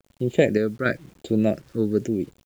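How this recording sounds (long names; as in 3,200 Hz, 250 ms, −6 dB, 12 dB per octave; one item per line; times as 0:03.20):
sample-and-hold tremolo
phaser sweep stages 6, 0.98 Hz, lowest notch 720–1,600 Hz
a quantiser's noise floor 10 bits, dither none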